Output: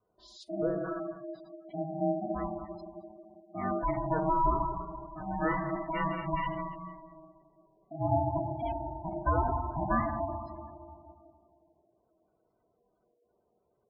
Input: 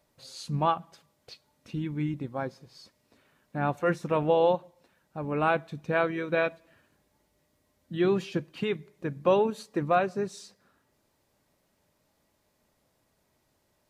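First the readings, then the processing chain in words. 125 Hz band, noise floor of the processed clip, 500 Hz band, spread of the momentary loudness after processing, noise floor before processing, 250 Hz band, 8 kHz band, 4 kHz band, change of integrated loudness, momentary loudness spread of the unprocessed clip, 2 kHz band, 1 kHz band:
-1.5 dB, -75 dBFS, -6.5 dB, 17 LU, -73 dBFS, -3.0 dB, no reading, under -10 dB, -4.0 dB, 14 LU, -7.0 dB, 0.0 dB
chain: bass shelf 220 Hz +7.5 dB; multi-head delay 90 ms, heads second and third, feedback 42%, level -20 dB; simulated room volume 2500 m³, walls mixed, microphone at 2 m; spectral gate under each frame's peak -15 dB strong; ring modulator 480 Hz; dynamic bell 470 Hz, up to +8 dB, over -40 dBFS, Q 2.7; vibrato 0.37 Hz 7.3 cents; time-frequency box 0.43–0.84 s, 680–8500 Hz -15 dB; comb of notches 270 Hz; trim -5 dB

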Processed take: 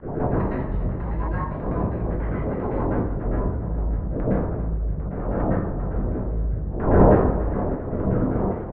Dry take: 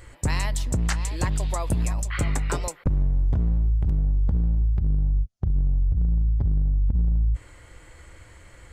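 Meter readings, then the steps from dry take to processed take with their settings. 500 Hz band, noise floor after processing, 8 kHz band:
+15.0 dB, -29 dBFS, under -40 dB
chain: wind noise 370 Hz -23 dBFS; treble shelf 3.7 kHz +11.5 dB; in parallel at -2 dB: compressor with a negative ratio -26 dBFS, ratio -0.5; on the sum: rotary cabinet horn 7 Hz, later 0.6 Hz, at 3.64 s; LFO low-pass saw down 5 Hz 500–1700 Hz; volume shaper 118 bpm, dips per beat 1, -22 dB, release 82 ms; distance through air 410 m; on a send: feedback delay 286 ms, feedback 59%, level -15.5 dB; on the sum: plate-style reverb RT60 0.64 s, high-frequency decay 0.8×, pre-delay 100 ms, DRR -7.5 dB; trim -10.5 dB

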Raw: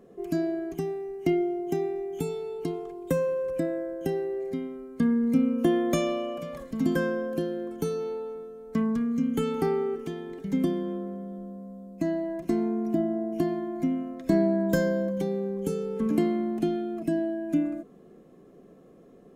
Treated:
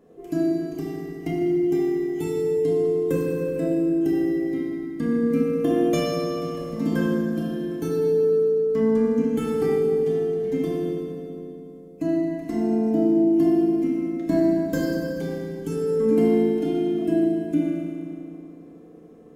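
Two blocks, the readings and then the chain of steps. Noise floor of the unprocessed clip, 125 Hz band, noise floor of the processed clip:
-53 dBFS, +3.5 dB, -44 dBFS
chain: FDN reverb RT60 2.7 s, low-frequency decay 1.25×, high-frequency decay 0.75×, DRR -5 dB; trim -3.5 dB

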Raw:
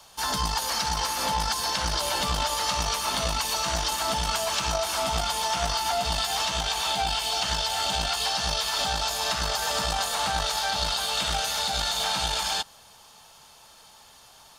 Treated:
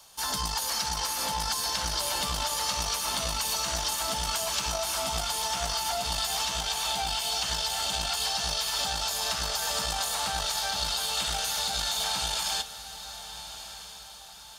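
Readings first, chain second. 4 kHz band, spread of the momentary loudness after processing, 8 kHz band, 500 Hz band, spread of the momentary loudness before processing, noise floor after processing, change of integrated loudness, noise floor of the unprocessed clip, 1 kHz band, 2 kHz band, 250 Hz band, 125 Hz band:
-2.0 dB, 11 LU, 0.0 dB, -5.0 dB, 1 LU, -45 dBFS, -2.5 dB, -52 dBFS, -5.0 dB, -4.0 dB, -5.5 dB, -5.5 dB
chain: treble shelf 4.9 kHz +8 dB; on a send: echo that smears into a reverb 1271 ms, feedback 43%, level -12.5 dB; on the sum: trim -5.5 dB

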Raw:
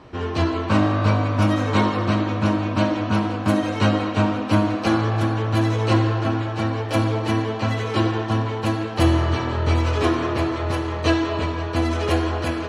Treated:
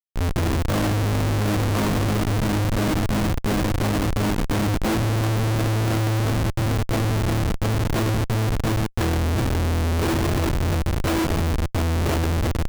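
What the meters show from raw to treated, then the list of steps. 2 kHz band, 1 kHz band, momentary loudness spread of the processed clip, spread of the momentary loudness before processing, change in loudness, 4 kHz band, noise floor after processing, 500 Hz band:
-2.0 dB, -4.0 dB, 2 LU, 4 LU, -1.0 dB, -1.0 dB, -27 dBFS, -3.0 dB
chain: Schmitt trigger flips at -20 dBFS

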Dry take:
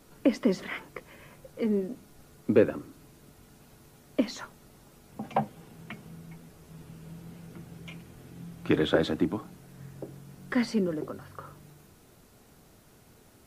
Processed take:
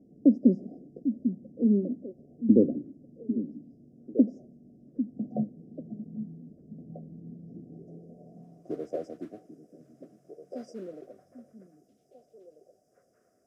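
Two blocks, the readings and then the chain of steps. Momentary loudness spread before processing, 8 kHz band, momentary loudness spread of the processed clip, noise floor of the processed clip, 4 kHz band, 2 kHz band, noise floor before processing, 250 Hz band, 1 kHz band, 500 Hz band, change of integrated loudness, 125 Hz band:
22 LU, under -15 dB, 24 LU, -69 dBFS, under -25 dB, under -25 dB, -58 dBFS, +4.0 dB, -15.0 dB, -4.0 dB, +0.5 dB, -1.0 dB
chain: FFT band-reject 760–4800 Hz; modulation noise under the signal 32 dB; band-pass sweep 240 Hz -> 1.4 kHz, 7.54–8.86 s; repeats whose band climbs or falls 795 ms, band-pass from 200 Hz, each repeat 1.4 oct, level -7 dB; trim +7 dB

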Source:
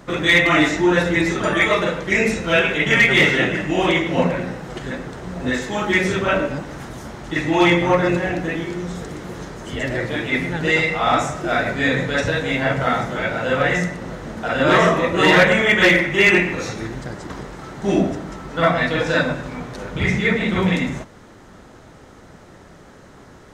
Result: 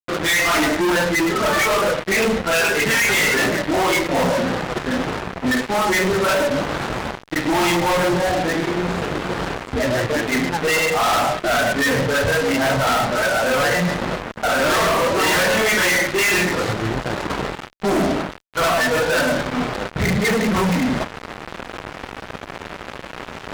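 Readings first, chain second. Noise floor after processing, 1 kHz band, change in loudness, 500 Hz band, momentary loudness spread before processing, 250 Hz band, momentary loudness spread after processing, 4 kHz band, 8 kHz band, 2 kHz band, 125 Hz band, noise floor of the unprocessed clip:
-37 dBFS, +2.5 dB, -1.0 dB, +0.5 dB, 17 LU, -1.0 dB, 11 LU, +1.5 dB, +9.5 dB, -1.0 dB, -2.0 dB, -45 dBFS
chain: local Wiener filter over 15 samples; spectral noise reduction 8 dB; bass shelf 460 Hz -11 dB; reverse; upward compressor, threshold -29 dBFS; reverse; fuzz box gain 40 dB, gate -40 dBFS; trim -3 dB

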